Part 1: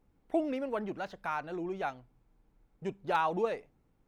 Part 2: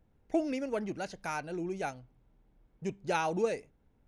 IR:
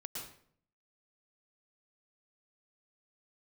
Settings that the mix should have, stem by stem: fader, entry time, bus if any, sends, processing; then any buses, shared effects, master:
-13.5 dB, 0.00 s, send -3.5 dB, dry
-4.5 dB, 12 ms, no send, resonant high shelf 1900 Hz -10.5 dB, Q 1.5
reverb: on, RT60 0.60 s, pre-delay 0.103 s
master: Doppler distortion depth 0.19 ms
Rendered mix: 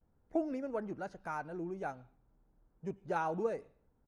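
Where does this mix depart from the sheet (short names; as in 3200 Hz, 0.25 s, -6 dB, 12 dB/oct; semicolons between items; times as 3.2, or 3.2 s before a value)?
stem 1 -13.5 dB -> -24.5 dB; master: missing Doppler distortion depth 0.19 ms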